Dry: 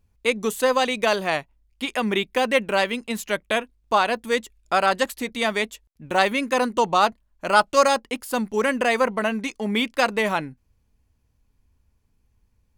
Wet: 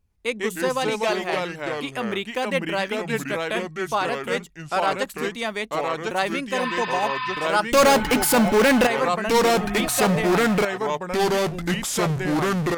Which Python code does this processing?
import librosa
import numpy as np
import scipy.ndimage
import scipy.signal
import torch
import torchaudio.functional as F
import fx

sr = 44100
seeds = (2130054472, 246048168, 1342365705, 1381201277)

y = fx.spec_repair(x, sr, seeds[0], start_s=6.6, length_s=0.85, low_hz=940.0, high_hz=5100.0, source='before')
y = fx.power_curve(y, sr, exponent=0.35, at=(7.72, 8.87))
y = fx.echo_pitch(y, sr, ms=102, semitones=-3, count=2, db_per_echo=-3.0)
y = y * librosa.db_to_amplitude(-4.5)